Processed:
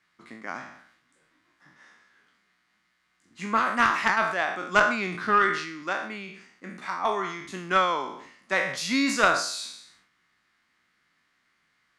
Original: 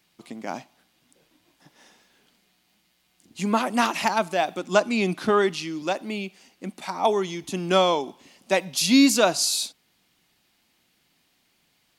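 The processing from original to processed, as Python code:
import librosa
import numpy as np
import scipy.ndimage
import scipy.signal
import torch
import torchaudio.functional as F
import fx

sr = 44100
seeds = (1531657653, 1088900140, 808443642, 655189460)

y = fx.spec_trails(x, sr, decay_s=0.55)
y = scipy.signal.sosfilt(scipy.signal.butter(2, 7700.0, 'lowpass', fs=sr, output='sos'), y)
y = fx.band_shelf(y, sr, hz=1500.0, db=12.5, octaves=1.2)
y = fx.cheby_harmonics(y, sr, harmonics=(2, 8), levels_db=(-9, -34), full_scale_db=4.0)
y = fx.sustainer(y, sr, db_per_s=74.0)
y = F.gain(torch.from_numpy(y), -9.5).numpy()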